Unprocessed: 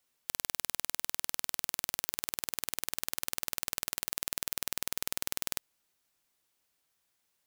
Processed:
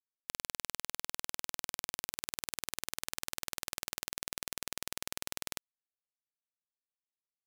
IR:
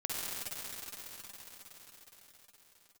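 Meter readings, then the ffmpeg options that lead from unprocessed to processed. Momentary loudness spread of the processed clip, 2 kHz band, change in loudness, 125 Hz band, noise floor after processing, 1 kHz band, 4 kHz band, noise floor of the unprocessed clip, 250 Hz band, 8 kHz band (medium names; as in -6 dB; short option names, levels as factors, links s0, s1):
0 LU, -2.0 dB, -5.0 dB, -2.0 dB, under -85 dBFS, -2.0 dB, -2.5 dB, -78 dBFS, -2.0 dB, -3.5 dB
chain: -af "adynamicsmooth=sensitivity=4.5:basefreq=920,acrusher=bits=5:mix=0:aa=0.5,volume=2"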